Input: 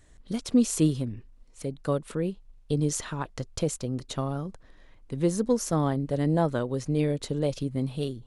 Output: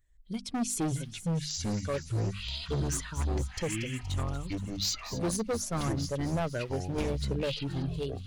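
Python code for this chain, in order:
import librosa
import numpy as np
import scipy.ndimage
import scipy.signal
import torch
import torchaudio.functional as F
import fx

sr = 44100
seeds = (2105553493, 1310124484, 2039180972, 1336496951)

p1 = fx.bin_expand(x, sr, power=1.5)
p2 = fx.low_shelf(p1, sr, hz=260.0, db=-11.0, at=(0.97, 1.94))
p3 = fx.echo_pitch(p2, sr, ms=449, semitones=-7, count=3, db_per_echo=-3.0)
p4 = fx.high_shelf(p3, sr, hz=2800.0, db=10.0, at=(4.13, 5.37))
p5 = np.clip(p4, -10.0 ** (-26.5 / 20.0), 10.0 ** (-26.5 / 20.0))
p6 = fx.hum_notches(p5, sr, base_hz=50, count=5)
p7 = p6 + fx.echo_wet_highpass(p6, sr, ms=236, feedback_pct=71, hz=3800.0, wet_db=-11.5, dry=0)
y = fx.band_squash(p7, sr, depth_pct=100, at=(6.98, 7.47))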